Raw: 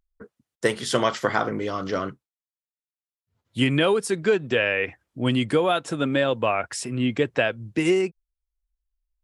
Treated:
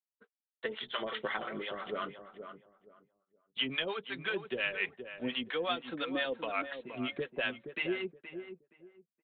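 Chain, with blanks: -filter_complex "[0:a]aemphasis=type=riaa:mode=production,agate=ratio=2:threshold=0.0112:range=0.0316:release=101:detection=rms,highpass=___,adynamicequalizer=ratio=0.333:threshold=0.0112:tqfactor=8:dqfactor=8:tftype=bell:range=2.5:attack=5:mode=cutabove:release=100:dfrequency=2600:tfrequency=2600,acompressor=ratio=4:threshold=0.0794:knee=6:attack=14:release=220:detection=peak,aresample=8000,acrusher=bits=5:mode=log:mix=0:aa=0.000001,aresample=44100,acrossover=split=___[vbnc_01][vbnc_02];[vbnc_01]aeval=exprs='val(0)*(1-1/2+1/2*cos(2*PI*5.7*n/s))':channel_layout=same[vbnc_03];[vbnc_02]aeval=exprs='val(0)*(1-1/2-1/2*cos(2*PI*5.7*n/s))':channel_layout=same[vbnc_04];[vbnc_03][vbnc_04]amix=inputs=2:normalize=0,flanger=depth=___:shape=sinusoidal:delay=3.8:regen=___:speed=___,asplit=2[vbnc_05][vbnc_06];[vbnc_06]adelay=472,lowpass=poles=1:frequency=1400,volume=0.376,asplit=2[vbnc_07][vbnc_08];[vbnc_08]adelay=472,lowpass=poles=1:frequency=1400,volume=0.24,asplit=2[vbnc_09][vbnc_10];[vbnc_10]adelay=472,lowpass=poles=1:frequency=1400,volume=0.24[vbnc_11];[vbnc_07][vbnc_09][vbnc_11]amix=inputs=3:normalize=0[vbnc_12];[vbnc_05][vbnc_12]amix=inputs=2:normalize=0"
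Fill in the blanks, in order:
70, 620, 1.5, -34, 0.34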